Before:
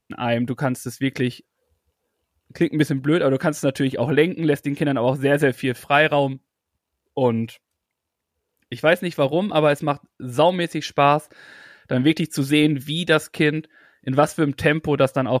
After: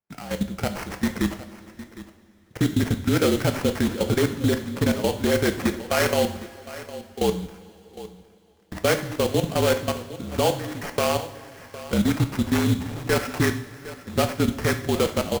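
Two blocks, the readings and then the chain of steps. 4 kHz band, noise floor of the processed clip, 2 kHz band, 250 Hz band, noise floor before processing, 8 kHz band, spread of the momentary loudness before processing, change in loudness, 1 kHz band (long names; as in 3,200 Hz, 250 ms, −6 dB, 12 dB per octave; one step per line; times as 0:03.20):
−2.0 dB, −54 dBFS, −5.5 dB, −3.0 dB, −81 dBFS, +5.0 dB, 8 LU, −3.5 dB, −6.0 dB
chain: low shelf with overshoot 100 Hz −12 dB, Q 1.5
hum removal 348.9 Hz, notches 38
output level in coarse steps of 19 dB
brickwall limiter −16.5 dBFS, peak gain reduction 9.5 dB
automatic gain control gain up to 5 dB
frequency shifter −45 Hz
sample-rate reduction 3,700 Hz, jitter 20%
on a send: single-tap delay 759 ms −16 dB
on the sum: coupled-rooms reverb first 0.51 s, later 3.9 s, from −18 dB, DRR 6.5 dB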